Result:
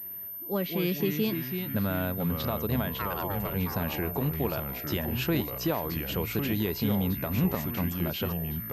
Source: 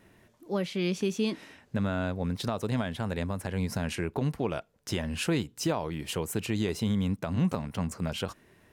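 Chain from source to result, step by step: 2.97–3.53 ring modulator 1300 Hz -> 470 Hz; echoes that change speed 0.104 s, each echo -3 st, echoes 3, each echo -6 dB; pulse-width modulation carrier 13000 Hz

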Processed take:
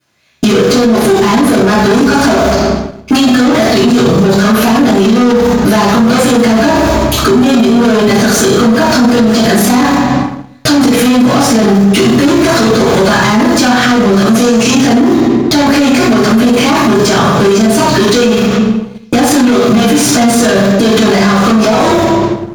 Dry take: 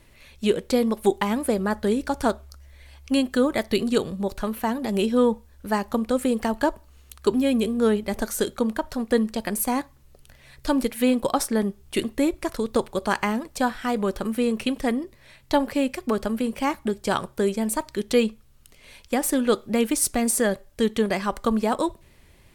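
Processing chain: 6.49–7.32 low shelf 150 Hz +8.5 dB; bit-crush 9-bit; gate -39 dBFS, range -51 dB; overdrive pedal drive 36 dB, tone 3200 Hz, clips at -6 dBFS; 14.27–14.71 bell 6500 Hz +9.5 dB 0.71 oct; reverb RT60 0.80 s, pre-delay 3 ms, DRR -15.5 dB; compressor, threshold -8 dBFS, peak gain reduction 17.5 dB; sample leveller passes 1; maximiser +11.5 dB; gain -1 dB

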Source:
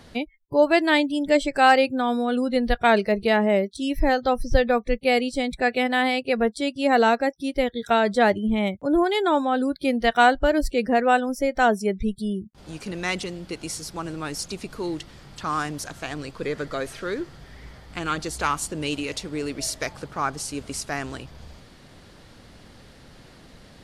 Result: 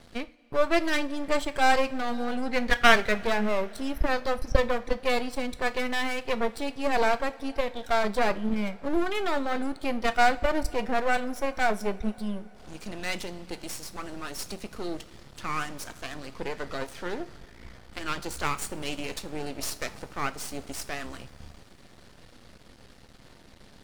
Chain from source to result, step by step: spectral gain 2.48–3.2, 1000–2400 Hz +11 dB; half-wave rectifier; two-slope reverb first 0.33 s, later 4.8 s, from -21 dB, DRR 11 dB; gain -1 dB

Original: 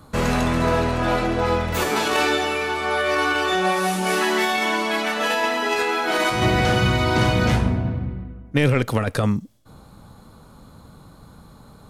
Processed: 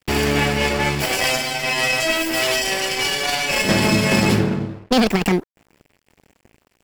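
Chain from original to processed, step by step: minimum comb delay 0.68 ms; crossover distortion -41.5 dBFS; wide varispeed 1.74×; gain +3.5 dB

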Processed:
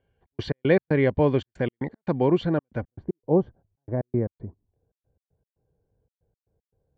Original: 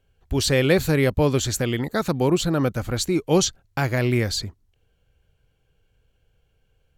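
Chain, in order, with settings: Bessel low-pass 2000 Hz, order 4, from 2.8 s 680 Hz; step gate "xx.x.x.xx" 116 bpm -60 dB; notch comb 1300 Hz

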